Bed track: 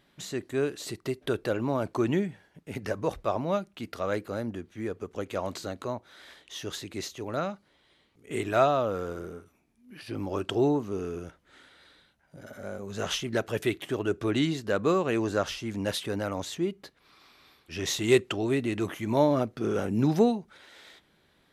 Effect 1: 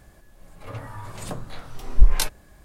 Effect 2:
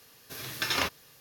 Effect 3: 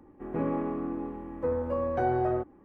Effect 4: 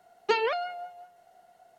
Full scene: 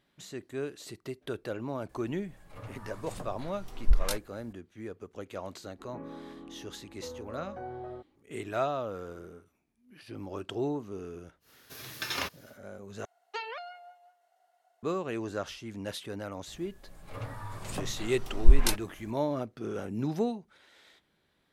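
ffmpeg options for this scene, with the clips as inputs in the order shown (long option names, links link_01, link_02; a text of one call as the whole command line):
ffmpeg -i bed.wav -i cue0.wav -i cue1.wav -i cue2.wav -i cue3.wav -filter_complex "[1:a]asplit=2[link_01][link_02];[0:a]volume=-7.5dB[link_03];[4:a]highpass=650[link_04];[link_03]asplit=2[link_05][link_06];[link_05]atrim=end=13.054[link_07];[link_04]atrim=end=1.78,asetpts=PTS-STARTPTS,volume=-9.5dB[link_08];[link_06]atrim=start=14.826[link_09];[link_01]atrim=end=2.64,asetpts=PTS-STARTPTS,volume=-9dB,afade=type=in:duration=0.004:curve=hsin,afade=type=out:start_time=2.636:duration=0.004:curve=hsin,adelay=1890[link_10];[3:a]atrim=end=2.64,asetpts=PTS-STARTPTS,volume=-14dB,afade=type=in:duration=0.004:curve=hsin,afade=type=out:start_time=2.636:duration=0.004:curve=hsin,adelay=5590[link_11];[2:a]atrim=end=1.2,asetpts=PTS-STARTPTS,volume=-5dB,afade=type=in:duration=0.1,afade=type=out:start_time=1.1:duration=0.1,adelay=11400[link_12];[link_02]atrim=end=2.64,asetpts=PTS-STARTPTS,volume=-3.5dB,afade=type=in:duration=0.004:curve=hsin,afade=type=out:start_time=2.636:duration=0.004:curve=hsin,adelay=16470[link_13];[link_07][link_08]acrossfade=duration=0.004:curve1=hsin:curve2=hsin[link_14];[link_14][link_09]acrossfade=duration=0.004:curve1=hsin:curve2=hsin[link_15];[link_15][link_10][link_11][link_12][link_13]amix=inputs=5:normalize=0" out.wav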